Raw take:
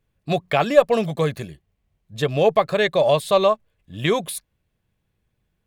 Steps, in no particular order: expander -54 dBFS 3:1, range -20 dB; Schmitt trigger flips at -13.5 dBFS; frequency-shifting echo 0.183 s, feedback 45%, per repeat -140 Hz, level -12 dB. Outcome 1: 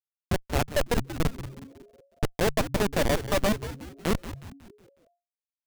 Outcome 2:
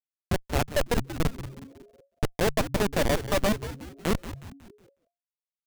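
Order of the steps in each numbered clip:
Schmitt trigger > expander > frequency-shifting echo; Schmitt trigger > frequency-shifting echo > expander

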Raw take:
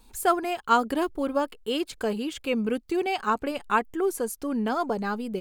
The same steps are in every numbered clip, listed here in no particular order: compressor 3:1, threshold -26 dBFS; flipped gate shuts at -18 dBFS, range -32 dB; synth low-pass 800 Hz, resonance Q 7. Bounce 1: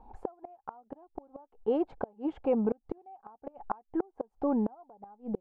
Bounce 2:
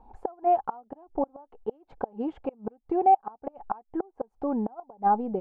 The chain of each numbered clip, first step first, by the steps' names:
compressor > synth low-pass > flipped gate; flipped gate > compressor > synth low-pass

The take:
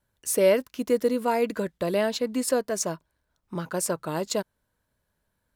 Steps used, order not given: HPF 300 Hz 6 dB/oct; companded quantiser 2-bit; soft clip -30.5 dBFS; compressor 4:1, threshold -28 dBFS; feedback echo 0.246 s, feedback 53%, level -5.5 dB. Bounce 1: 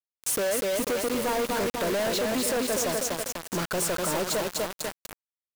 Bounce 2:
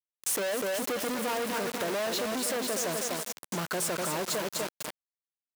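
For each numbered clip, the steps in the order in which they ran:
HPF > compressor > feedback echo > soft clip > companded quantiser; soft clip > feedback echo > companded quantiser > HPF > compressor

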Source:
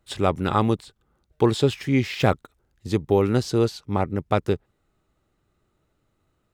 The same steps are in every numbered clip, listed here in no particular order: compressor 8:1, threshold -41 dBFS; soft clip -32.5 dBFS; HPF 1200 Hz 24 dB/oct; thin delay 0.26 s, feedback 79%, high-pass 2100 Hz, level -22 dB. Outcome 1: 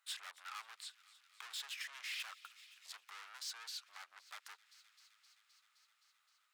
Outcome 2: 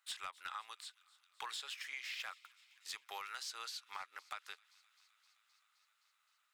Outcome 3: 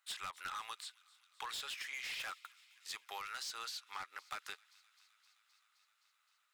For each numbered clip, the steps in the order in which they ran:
soft clip > thin delay > compressor > HPF; HPF > compressor > soft clip > thin delay; HPF > soft clip > compressor > thin delay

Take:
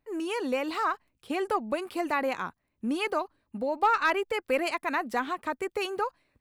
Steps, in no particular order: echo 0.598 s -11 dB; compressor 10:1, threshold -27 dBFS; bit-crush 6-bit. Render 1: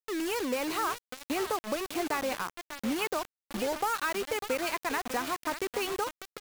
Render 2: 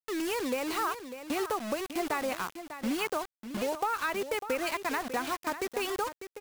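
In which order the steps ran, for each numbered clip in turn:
compressor > echo > bit-crush; bit-crush > compressor > echo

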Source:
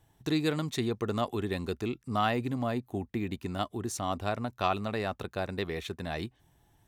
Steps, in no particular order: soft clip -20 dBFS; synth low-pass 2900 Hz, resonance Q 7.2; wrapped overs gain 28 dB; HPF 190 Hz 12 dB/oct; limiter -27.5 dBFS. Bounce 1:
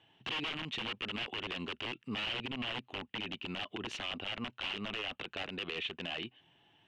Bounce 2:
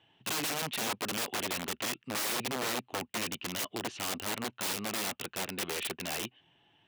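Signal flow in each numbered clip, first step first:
soft clip > HPF > wrapped overs > synth low-pass > limiter; soft clip > synth low-pass > wrapped overs > limiter > HPF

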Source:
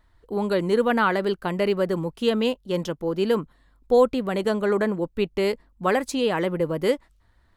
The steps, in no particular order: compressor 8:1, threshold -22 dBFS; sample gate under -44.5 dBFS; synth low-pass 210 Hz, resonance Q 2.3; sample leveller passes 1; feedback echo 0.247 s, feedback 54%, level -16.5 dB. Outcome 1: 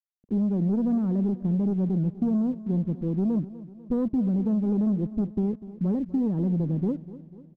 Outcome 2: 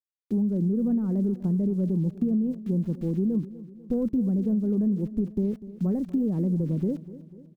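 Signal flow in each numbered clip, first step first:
sample gate > synth low-pass > sample leveller > compressor > feedback echo; sample leveller > synth low-pass > sample gate > compressor > feedback echo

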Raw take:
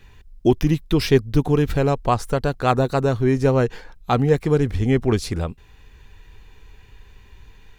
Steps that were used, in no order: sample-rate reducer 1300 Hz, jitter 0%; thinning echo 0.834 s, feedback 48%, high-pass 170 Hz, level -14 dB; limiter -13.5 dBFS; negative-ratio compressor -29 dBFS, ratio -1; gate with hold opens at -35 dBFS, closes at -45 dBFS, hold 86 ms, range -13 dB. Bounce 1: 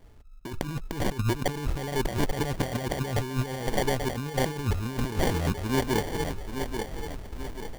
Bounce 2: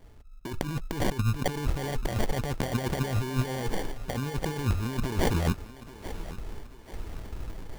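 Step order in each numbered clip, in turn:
thinning echo > gate with hold > negative-ratio compressor > sample-rate reducer > limiter; gate with hold > sample-rate reducer > negative-ratio compressor > limiter > thinning echo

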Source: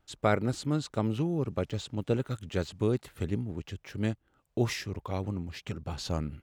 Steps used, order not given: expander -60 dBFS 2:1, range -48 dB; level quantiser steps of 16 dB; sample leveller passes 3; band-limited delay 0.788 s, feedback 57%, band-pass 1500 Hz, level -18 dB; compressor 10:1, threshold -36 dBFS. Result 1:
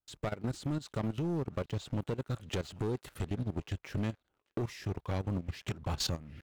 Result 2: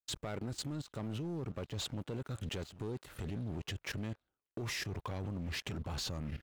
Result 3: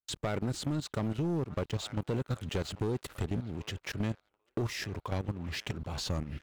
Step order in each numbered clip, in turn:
compressor > expander > band-limited delay > sample leveller > level quantiser; compressor > band-limited delay > level quantiser > sample leveller > expander; level quantiser > band-limited delay > expander > compressor > sample leveller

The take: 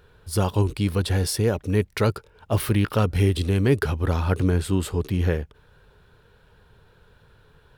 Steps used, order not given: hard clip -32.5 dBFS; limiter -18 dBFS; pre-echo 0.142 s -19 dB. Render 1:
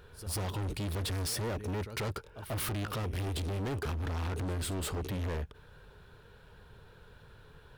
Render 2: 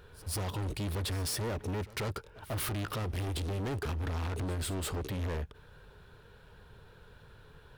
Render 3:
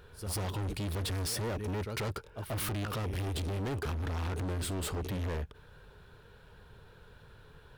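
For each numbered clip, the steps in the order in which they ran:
limiter > pre-echo > hard clip; limiter > hard clip > pre-echo; pre-echo > limiter > hard clip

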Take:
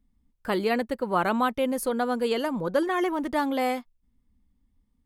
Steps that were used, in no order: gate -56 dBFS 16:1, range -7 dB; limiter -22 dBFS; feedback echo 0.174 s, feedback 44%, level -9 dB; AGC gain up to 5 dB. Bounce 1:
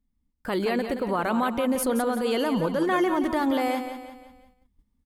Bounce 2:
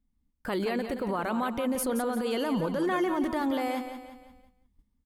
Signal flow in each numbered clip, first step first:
limiter > feedback echo > AGC > gate; AGC > limiter > feedback echo > gate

